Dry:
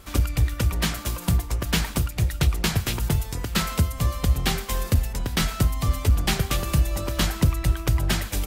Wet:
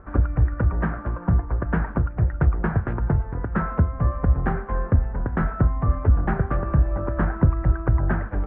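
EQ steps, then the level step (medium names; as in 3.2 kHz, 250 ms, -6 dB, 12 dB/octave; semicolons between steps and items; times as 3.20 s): elliptic low-pass 1.6 kHz, stop band 80 dB; +3.0 dB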